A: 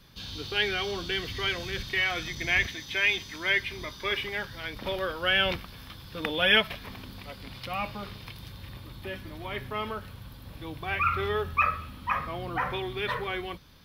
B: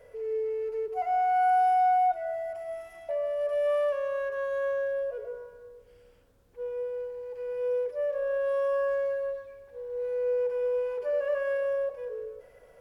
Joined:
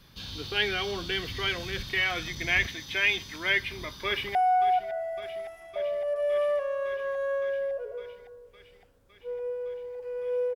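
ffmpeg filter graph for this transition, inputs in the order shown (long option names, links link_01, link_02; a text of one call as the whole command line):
ffmpeg -i cue0.wav -i cue1.wav -filter_complex "[0:a]apad=whole_dur=10.55,atrim=end=10.55,atrim=end=4.352[link_01];[1:a]atrim=start=1.678:end=7.88[link_02];[link_01][link_02]acrossfade=duration=0.004:curve1=hsin:curve2=hsin,asplit=2[link_03][link_04];[link_04]afade=type=in:start_time=4.05:duration=0.01,afade=type=out:start_time=4.35:duration=0.01,aecho=0:1:560|1120|1680|2240|2800|3360|3920|4480|5040|5600|6160|6720:0.188365|0.150692|0.120554|0.0964428|0.0771543|0.0617234|0.0493787|0.039503|0.0316024|0.0252819|0.0202255|0.0161804[link_05];[link_03][link_05]amix=inputs=2:normalize=0" out.wav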